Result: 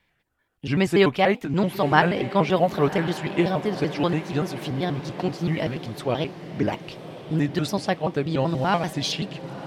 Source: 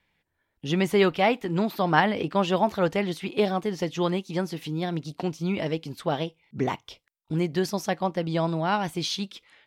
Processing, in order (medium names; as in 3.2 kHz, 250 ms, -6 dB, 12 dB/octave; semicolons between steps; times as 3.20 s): pitch shift switched off and on -3.5 st, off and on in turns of 96 ms; echo that smears into a reverb 1052 ms, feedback 57%, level -13.5 dB; trim +3 dB